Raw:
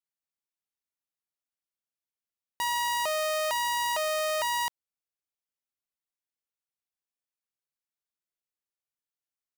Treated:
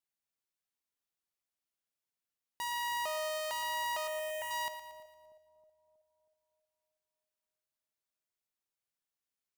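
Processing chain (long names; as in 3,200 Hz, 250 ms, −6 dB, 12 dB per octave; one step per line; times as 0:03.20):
brickwall limiter −32 dBFS, peak gain reduction 8.5 dB
0:04.07–0:04.51: phaser with its sweep stopped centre 1,200 Hz, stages 6
on a send: echo with a time of its own for lows and highs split 630 Hz, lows 319 ms, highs 115 ms, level −11 dB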